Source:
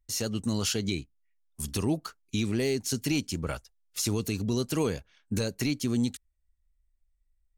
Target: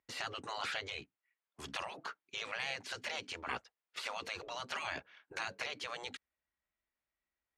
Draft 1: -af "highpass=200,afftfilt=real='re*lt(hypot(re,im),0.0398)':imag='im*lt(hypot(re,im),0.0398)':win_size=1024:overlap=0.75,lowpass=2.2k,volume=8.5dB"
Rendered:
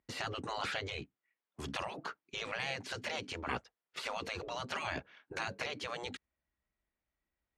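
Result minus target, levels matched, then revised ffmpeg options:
500 Hz band +3.5 dB
-af "highpass=200,afftfilt=real='re*lt(hypot(re,im),0.0398)':imag='im*lt(hypot(re,im),0.0398)':win_size=1024:overlap=0.75,lowpass=2.2k,lowshelf=f=480:g=-10.5,volume=8.5dB"

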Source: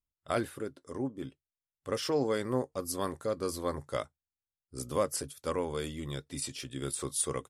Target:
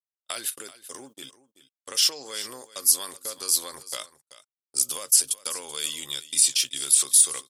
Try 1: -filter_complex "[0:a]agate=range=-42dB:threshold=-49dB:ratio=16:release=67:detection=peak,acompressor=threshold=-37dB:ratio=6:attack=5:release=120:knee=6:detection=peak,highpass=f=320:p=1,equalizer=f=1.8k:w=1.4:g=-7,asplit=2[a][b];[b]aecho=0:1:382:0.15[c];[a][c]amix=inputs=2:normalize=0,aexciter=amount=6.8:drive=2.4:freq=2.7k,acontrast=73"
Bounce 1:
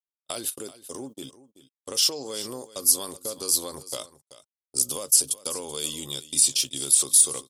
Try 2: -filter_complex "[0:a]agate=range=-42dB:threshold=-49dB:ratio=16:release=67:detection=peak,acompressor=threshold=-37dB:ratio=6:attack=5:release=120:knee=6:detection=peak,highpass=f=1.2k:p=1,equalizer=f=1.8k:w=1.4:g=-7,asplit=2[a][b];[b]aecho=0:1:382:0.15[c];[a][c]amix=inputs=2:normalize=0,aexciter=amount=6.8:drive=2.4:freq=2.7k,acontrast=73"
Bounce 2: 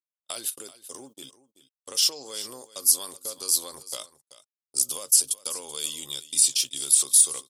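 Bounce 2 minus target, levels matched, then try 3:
2000 Hz band -7.0 dB
-filter_complex "[0:a]agate=range=-42dB:threshold=-49dB:ratio=16:release=67:detection=peak,acompressor=threshold=-37dB:ratio=6:attack=5:release=120:knee=6:detection=peak,highpass=f=1.2k:p=1,equalizer=f=1.8k:w=1.4:g=4,asplit=2[a][b];[b]aecho=0:1:382:0.15[c];[a][c]amix=inputs=2:normalize=0,aexciter=amount=6.8:drive=2.4:freq=2.7k,acontrast=73"

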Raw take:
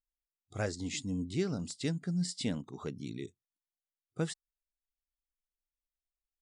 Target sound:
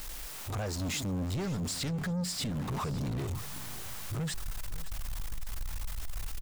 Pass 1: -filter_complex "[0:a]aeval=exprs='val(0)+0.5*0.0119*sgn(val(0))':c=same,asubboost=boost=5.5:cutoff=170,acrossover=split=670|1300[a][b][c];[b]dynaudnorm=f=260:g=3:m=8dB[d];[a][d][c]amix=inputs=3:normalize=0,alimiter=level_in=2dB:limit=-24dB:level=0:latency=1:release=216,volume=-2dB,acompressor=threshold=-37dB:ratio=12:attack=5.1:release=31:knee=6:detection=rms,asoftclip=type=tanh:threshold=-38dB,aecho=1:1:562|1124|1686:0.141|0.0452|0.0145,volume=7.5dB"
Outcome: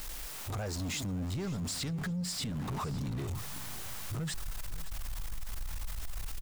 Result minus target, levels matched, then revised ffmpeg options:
compressor: peak gain reduction +8.5 dB
-filter_complex "[0:a]aeval=exprs='val(0)+0.5*0.0119*sgn(val(0))':c=same,asubboost=boost=5.5:cutoff=170,acrossover=split=670|1300[a][b][c];[b]dynaudnorm=f=260:g=3:m=8dB[d];[a][d][c]amix=inputs=3:normalize=0,alimiter=level_in=2dB:limit=-24dB:level=0:latency=1:release=216,volume=-2dB,asoftclip=type=tanh:threshold=-38dB,aecho=1:1:562|1124|1686:0.141|0.0452|0.0145,volume=7.5dB"

